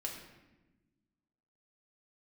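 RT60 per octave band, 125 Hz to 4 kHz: 1.8, 1.9, 1.2, 0.95, 1.0, 0.75 s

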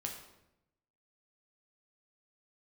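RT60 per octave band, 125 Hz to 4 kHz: 1.2, 1.1, 0.90, 0.80, 0.75, 0.65 s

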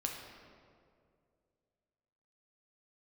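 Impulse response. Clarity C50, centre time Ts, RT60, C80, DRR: 3.5 dB, 64 ms, 2.3 s, 5.0 dB, 0.5 dB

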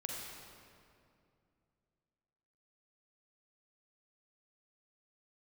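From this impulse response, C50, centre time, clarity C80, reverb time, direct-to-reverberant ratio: -1.0 dB, 0.118 s, 0.5 dB, 2.4 s, -2.0 dB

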